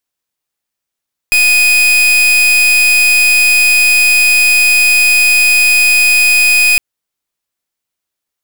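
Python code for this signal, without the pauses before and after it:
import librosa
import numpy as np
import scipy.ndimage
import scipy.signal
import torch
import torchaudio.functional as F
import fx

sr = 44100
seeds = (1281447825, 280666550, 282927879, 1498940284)

y = fx.pulse(sr, length_s=5.46, hz=2490.0, level_db=-8.5, duty_pct=40)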